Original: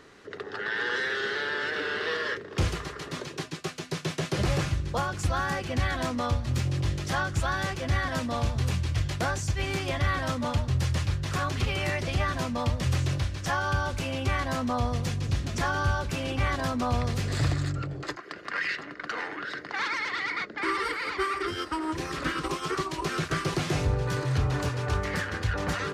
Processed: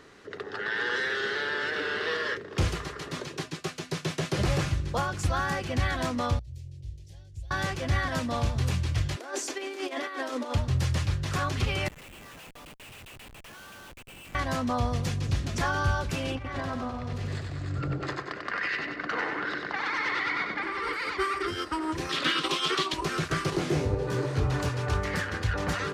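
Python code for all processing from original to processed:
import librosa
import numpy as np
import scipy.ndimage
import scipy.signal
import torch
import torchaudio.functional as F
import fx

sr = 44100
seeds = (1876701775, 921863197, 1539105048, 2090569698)

y = fx.chain(x, sr, fx.tone_stack(knobs='10-0-1'),
    fx.fixed_phaser(hz=530.0, stages=4), at=(6.39, 7.51))
y = fx.chain(y, sr, fx.ellip_highpass(hz=260.0, order=4, stop_db=40),
    fx.peak_eq(hz=400.0, db=6.5, octaves=0.62),
    fx.over_compress(threshold_db=-33.0, ratio=-0.5), at=(9.16, 10.55))
y = fx.chain(y, sr, fx.bandpass_q(hz=2700.0, q=4.8),
    fx.over_compress(threshold_db=-45.0, ratio=-0.5),
    fx.schmitt(flips_db=-48.0), at=(11.88, 14.35))
y = fx.chain(y, sr, fx.lowpass(hz=3200.0, slope=6),
    fx.over_compress(threshold_db=-33.0, ratio=-1.0),
    fx.echo_feedback(ms=94, feedback_pct=47, wet_db=-4.5), at=(16.35, 20.93))
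y = fx.chain(y, sr, fx.highpass(hz=180.0, slope=12),
    fx.peak_eq(hz=3400.0, db=14.0, octaves=1.0), at=(22.09, 22.94))
y = fx.chain(y, sr, fx.peak_eq(hz=360.0, db=8.0, octaves=1.6),
    fx.detune_double(cents=40), at=(23.5, 24.45))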